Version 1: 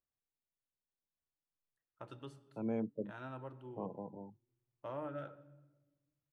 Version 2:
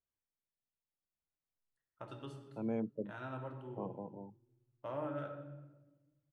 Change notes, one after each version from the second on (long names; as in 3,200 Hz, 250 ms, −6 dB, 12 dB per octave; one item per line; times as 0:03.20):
first voice: send +11.0 dB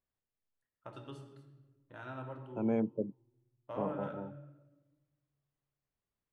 first voice: entry −1.15 s
second voice +5.5 dB